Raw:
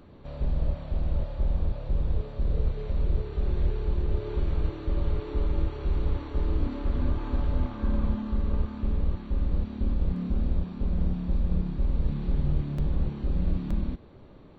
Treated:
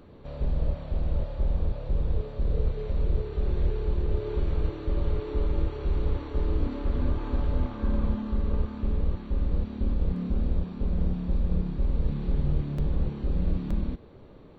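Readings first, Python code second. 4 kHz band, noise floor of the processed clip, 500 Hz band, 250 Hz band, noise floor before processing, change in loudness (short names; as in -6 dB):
n/a, -48 dBFS, +2.5 dB, 0.0 dB, -49 dBFS, 0.0 dB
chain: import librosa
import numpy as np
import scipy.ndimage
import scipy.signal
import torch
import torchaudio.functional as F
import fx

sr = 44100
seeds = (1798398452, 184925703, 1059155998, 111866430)

y = fx.peak_eq(x, sr, hz=460.0, db=4.5, octaves=0.39)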